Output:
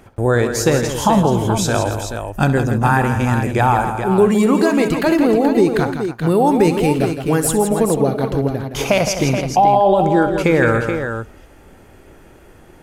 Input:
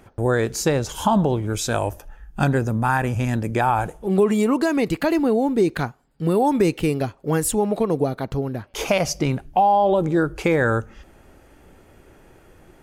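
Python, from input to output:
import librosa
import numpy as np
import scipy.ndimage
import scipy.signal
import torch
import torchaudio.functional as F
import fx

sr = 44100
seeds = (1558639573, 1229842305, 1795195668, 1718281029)

y = fx.echo_multitap(x, sr, ms=(66, 165, 283, 428), db=(-13.5, -8.5, -15.5, -8.0))
y = y * 10.0 ** (4.0 / 20.0)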